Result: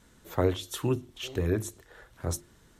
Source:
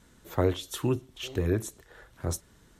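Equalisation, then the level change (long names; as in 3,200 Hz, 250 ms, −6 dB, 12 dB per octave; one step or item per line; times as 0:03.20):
mains-hum notches 50/100/150/200/250/300/350 Hz
0.0 dB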